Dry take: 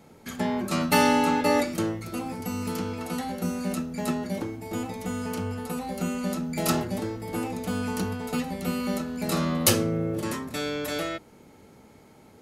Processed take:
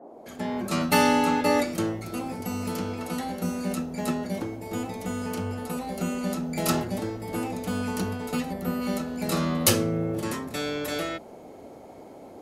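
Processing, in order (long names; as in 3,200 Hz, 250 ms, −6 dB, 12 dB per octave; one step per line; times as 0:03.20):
fade in at the beginning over 0.71 s
noise in a band 220–770 Hz −46 dBFS
gain on a spectral selection 0:08.53–0:08.82, 2,000–11,000 Hz −8 dB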